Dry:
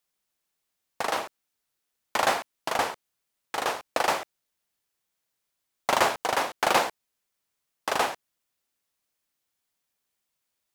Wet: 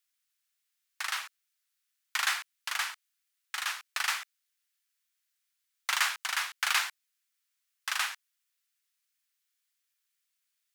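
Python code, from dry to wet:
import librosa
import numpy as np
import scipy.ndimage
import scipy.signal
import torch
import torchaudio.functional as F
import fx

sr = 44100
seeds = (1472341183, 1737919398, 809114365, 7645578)

y = scipy.signal.sosfilt(scipy.signal.butter(4, 1400.0, 'highpass', fs=sr, output='sos'), x)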